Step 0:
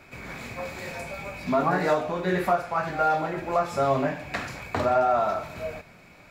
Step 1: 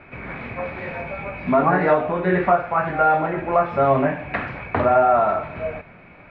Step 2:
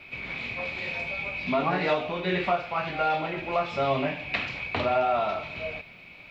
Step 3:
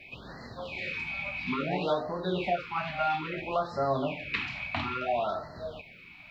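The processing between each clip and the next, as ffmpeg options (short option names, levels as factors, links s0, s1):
-af "lowpass=f=2600:w=0.5412,lowpass=f=2600:w=1.3066,volume=2"
-af "aexciter=amount=13.8:drive=2.6:freq=2500,volume=0.376"
-af "afftfilt=real='re*(1-between(b*sr/1024,390*pow(2900/390,0.5+0.5*sin(2*PI*0.59*pts/sr))/1.41,390*pow(2900/390,0.5+0.5*sin(2*PI*0.59*pts/sr))*1.41))':imag='im*(1-between(b*sr/1024,390*pow(2900/390,0.5+0.5*sin(2*PI*0.59*pts/sr))/1.41,390*pow(2900/390,0.5+0.5*sin(2*PI*0.59*pts/sr))*1.41))':win_size=1024:overlap=0.75,volume=0.75"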